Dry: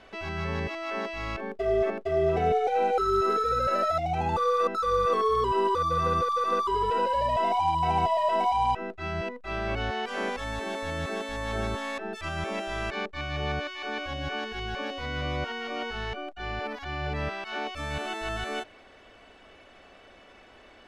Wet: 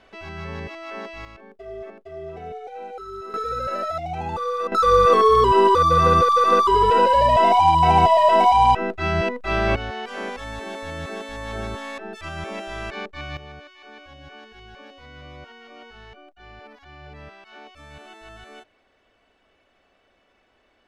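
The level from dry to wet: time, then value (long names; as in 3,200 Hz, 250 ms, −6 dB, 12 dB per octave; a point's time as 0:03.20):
−2 dB
from 0:01.25 −11 dB
from 0:03.34 −1 dB
from 0:04.72 +10 dB
from 0:09.76 0 dB
from 0:13.37 −11 dB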